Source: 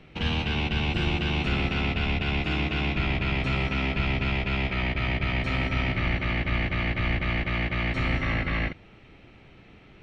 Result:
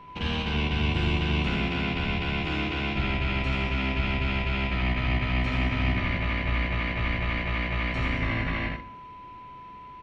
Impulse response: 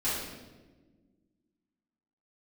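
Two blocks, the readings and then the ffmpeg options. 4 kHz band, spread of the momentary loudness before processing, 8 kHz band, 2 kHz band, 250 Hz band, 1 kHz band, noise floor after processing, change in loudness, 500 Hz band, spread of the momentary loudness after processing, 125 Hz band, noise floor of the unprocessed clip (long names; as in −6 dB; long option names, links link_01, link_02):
−1.0 dB, 1 LU, can't be measured, −1.0 dB, 0.0 dB, +0.5 dB, −44 dBFS, −0.5 dB, −1.0 dB, 10 LU, −0.5 dB, −52 dBFS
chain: -filter_complex "[0:a]aeval=exprs='val(0)+0.00708*sin(2*PI*1000*n/s)':channel_layout=same,aecho=1:1:81:0.631,asplit=2[link_01][link_02];[1:a]atrim=start_sample=2205,afade=type=out:start_time=0.34:duration=0.01,atrim=end_sample=15435,adelay=12[link_03];[link_02][link_03]afir=irnorm=-1:irlink=0,volume=-23dB[link_04];[link_01][link_04]amix=inputs=2:normalize=0,volume=-2.5dB"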